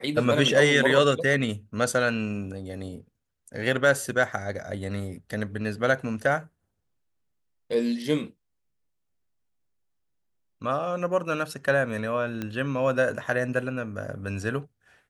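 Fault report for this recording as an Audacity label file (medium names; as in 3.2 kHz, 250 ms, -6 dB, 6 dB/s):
12.420000	12.420000	pop -18 dBFS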